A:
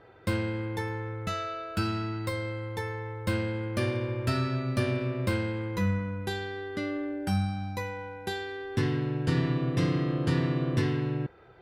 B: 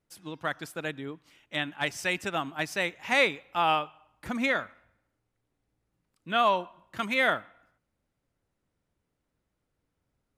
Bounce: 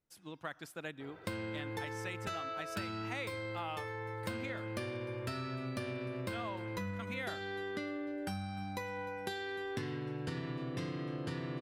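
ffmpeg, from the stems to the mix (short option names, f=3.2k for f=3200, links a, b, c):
-filter_complex "[0:a]lowshelf=f=190:g=-8,adelay=1000,volume=1.5dB,asplit=2[a][b];[b]volume=-21dB[c];[1:a]volume=-8dB[d];[c]aecho=0:1:302|604|906|1208|1510|1812:1|0.45|0.202|0.0911|0.041|0.0185[e];[a][d][e]amix=inputs=3:normalize=0,acompressor=threshold=-37dB:ratio=6"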